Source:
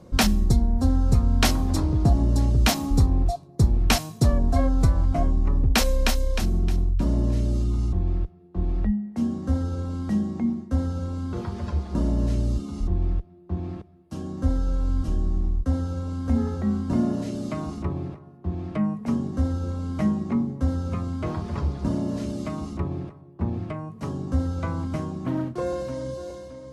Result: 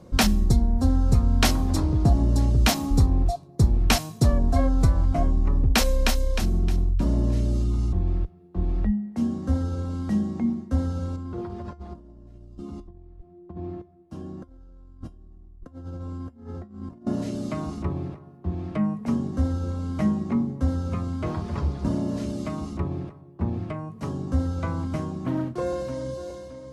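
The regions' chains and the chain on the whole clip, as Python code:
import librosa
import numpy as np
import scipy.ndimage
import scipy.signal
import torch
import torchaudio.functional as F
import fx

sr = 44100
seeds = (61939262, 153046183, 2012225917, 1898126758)

y = fx.chain(x, sr, fx.high_shelf(hz=2300.0, db=-9.0),
    fx.over_compress(threshold_db=-29.0, ratio=-0.5),
    fx.comb_fb(f0_hz=350.0, decay_s=0.18, harmonics='all', damping=0.0, mix_pct=70), at=(11.16, 17.07))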